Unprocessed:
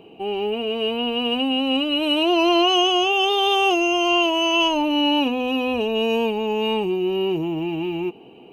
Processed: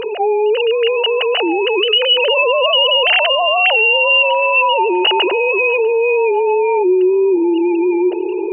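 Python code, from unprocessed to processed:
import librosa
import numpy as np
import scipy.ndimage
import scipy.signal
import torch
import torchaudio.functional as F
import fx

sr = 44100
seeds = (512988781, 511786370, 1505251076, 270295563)

y = fx.sine_speech(x, sr)
y = fx.echo_filtered(y, sr, ms=647, feedback_pct=60, hz=1400.0, wet_db=-23)
y = fx.env_flatten(y, sr, amount_pct=70)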